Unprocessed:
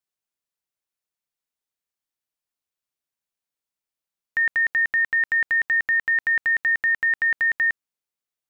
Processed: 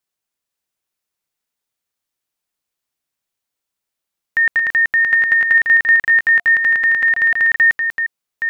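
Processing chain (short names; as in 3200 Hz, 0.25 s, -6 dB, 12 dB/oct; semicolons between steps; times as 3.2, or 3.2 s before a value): reverse delay 0.504 s, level -5 dB; 6.35–7.4 notch 700 Hz, Q 21; gain +6.5 dB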